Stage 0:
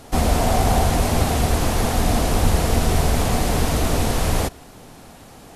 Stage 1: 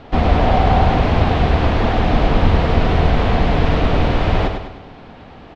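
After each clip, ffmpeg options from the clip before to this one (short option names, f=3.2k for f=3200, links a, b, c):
-filter_complex "[0:a]lowpass=f=3.5k:w=0.5412,lowpass=f=3.5k:w=1.3066,asplit=2[a][b];[b]aecho=0:1:101|202|303|404|505|606:0.473|0.222|0.105|0.0491|0.0231|0.0109[c];[a][c]amix=inputs=2:normalize=0,volume=3.5dB"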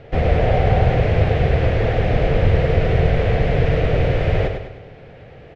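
-af "equalizer=f=125:t=o:w=1:g=10,equalizer=f=250:t=o:w=1:g=-10,equalizer=f=500:t=o:w=1:g=12,equalizer=f=1k:t=o:w=1:g=-12,equalizer=f=2k:t=o:w=1:g=7,equalizer=f=4k:t=o:w=1:g=-5,volume=-4.5dB"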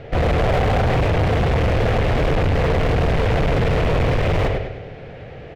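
-af "asoftclip=type=hard:threshold=-20.5dB,volume=5dB"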